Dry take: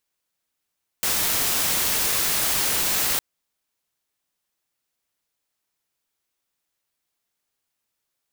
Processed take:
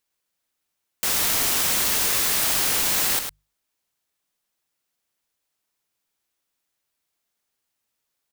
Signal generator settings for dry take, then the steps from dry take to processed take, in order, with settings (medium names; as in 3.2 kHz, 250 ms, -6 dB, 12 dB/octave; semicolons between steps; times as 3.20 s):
noise white, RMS -22.5 dBFS 2.16 s
hum notches 50/100/150 Hz; on a send: delay 103 ms -7.5 dB